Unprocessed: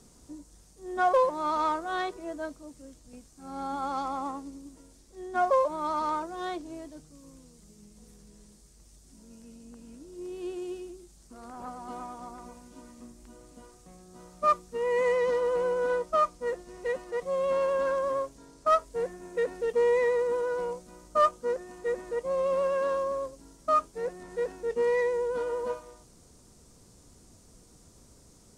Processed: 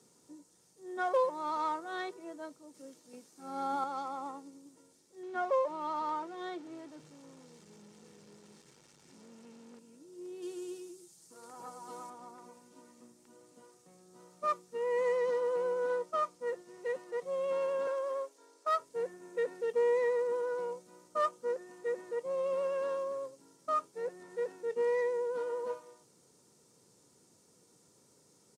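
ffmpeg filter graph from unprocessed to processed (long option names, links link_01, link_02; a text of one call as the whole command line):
ffmpeg -i in.wav -filter_complex "[0:a]asettb=1/sr,asplit=3[link_01][link_02][link_03];[link_01]atrim=end=2.744[link_04];[link_02]atrim=start=2.74:end=3.84,asetpts=PTS-STARTPTS,afade=type=in:duration=0.004:curve=qsin,afade=type=out:start_time=1.096:duration=0.004:curve=qsin,highpass=frequency=170:width=0.5412,highpass=frequency=170:width=1.3066,equalizer=frequency=7800:width=2.3:gain=-3.5,acontrast=51[link_05];[link_03]atrim=start=3.836[link_06];[link_04][link_05]acrossfade=duration=0.004:curve1=hsin:curve2=qsin[link_07];[link_07][link_06]acrossfade=duration=0.004:curve1=qsin:curve2=hsin,asettb=1/sr,asplit=3[link_08][link_09][link_10];[link_08]atrim=end=5.234[link_11];[link_09]atrim=start=5.23:end=9.79,asetpts=PTS-STARTPTS,afade=type=in:duration=0.004:curve=qsin,afade=type=out:start_time=4.556:duration=0.004:curve=qsin,aeval=exprs='val(0)+0.5*0.00668*sgn(val(0))':channel_layout=same,adynamicsmooth=sensitivity=1.5:basefreq=6600[link_12];[link_10]atrim=start=9.786[link_13];[link_11][link_12]acrossfade=duration=0.004:curve1=hsin:curve2=qsin[link_14];[link_14][link_13]acrossfade=duration=0.004:curve1=qsin:curve2=hsin,asettb=1/sr,asplit=3[link_15][link_16][link_17];[link_15]atrim=end=10.424[link_18];[link_16]atrim=start=10.42:end=12.1,asetpts=PTS-STARTPTS,afade=type=in:duration=0.004:curve=qsin,afade=type=out:start_time=1.676:duration=0.004:curve=qsin,bass=frequency=250:gain=0,treble=frequency=4000:gain=8,aecho=1:1:6.3:0.42,atrim=end_sample=74088[link_19];[link_17]atrim=start=12.096[link_20];[link_18][link_19]acrossfade=duration=0.004:curve1=hsin:curve2=qsin[link_21];[link_21][link_20]acrossfade=duration=0.004:curve1=qsin:curve2=hsin,asettb=1/sr,asplit=3[link_22][link_23][link_24];[link_22]atrim=end=17.874[link_25];[link_23]atrim=start=17.87:end=18.79,asetpts=PTS-STARTPTS,afade=type=in:duration=0.004:curve=qsin,afade=type=out:start_time=0.916:duration=0.004:curve=qsin,highpass=frequency=350:width=0.5412,highpass=frequency=350:width=1.3066,asoftclip=type=hard:threshold=-17.5dB[link_26];[link_24]atrim=start=18.786[link_27];[link_25][link_26]acrossfade=duration=0.004:curve1=hsin:curve2=qsin[link_28];[link_28][link_27]acrossfade=duration=0.004:curve1=qsin:curve2=hsin,highpass=frequency=140:width=0.5412,highpass=frequency=140:width=1.3066,aecho=1:1:2.2:0.35,volume=-7dB" out.wav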